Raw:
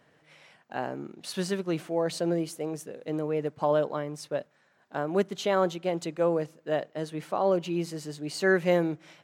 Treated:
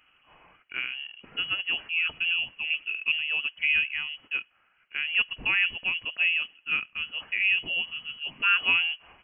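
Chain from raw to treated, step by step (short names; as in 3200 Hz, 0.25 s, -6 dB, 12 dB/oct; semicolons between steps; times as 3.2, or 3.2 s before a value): 2.7–3.12 EQ curve 130 Hz 0 dB, 710 Hz +12 dB, 1700 Hz 0 dB; inverted band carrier 3100 Hz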